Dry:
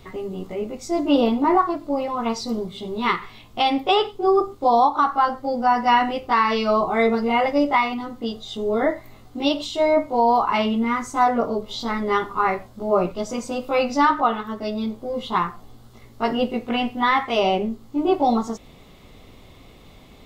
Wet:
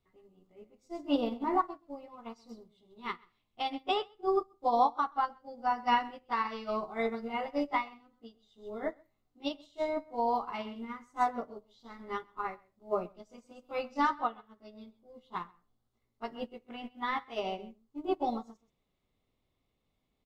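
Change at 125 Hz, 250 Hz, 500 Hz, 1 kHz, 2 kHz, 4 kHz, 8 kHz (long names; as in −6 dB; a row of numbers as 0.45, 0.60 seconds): below −15 dB, −15.5 dB, −14.5 dB, −12.5 dB, −14.0 dB, −15.0 dB, below −20 dB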